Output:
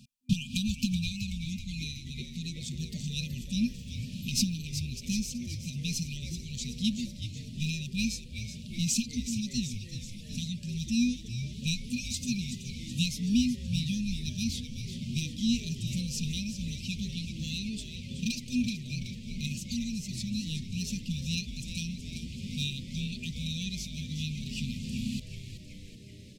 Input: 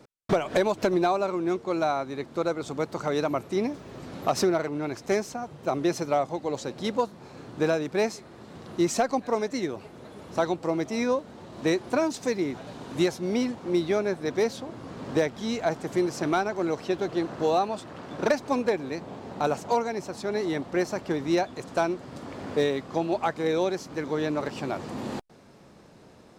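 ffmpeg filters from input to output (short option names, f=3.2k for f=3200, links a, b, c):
-filter_complex "[0:a]afftfilt=real='re*(1-between(b*sr/4096,250,2400))':imag='im*(1-between(b*sr/4096,250,2400))':win_size=4096:overlap=0.75,asplit=8[a][b][c][d][e][f][g][h];[b]adelay=377,afreqshift=-110,volume=-9.5dB[i];[c]adelay=754,afreqshift=-220,volume=-14.2dB[j];[d]adelay=1131,afreqshift=-330,volume=-19dB[k];[e]adelay=1508,afreqshift=-440,volume=-23.7dB[l];[f]adelay=1885,afreqshift=-550,volume=-28.4dB[m];[g]adelay=2262,afreqshift=-660,volume=-33.2dB[n];[h]adelay=2639,afreqshift=-770,volume=-37.9dB[o];[a][i][j][k][l][m][n][o]amix=inputs=8:normalize=0,volume=3.5dB"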